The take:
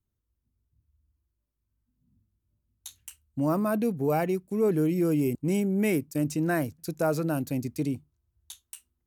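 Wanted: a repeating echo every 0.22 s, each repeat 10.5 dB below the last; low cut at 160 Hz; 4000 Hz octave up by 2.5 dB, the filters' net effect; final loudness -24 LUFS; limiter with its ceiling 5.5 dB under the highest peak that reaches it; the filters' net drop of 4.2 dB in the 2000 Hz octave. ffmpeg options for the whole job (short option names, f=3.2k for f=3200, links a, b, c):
-af "highpass=160,equalizer=f=2k:t=o:g=-7,equalizer=f=4k:t=o:g=5.5,alimiter=limit=-20.5dB:level=0:latency=1,aecho=1:1:220|440|660:0.299|0.0896|0.0269,volume=6dB"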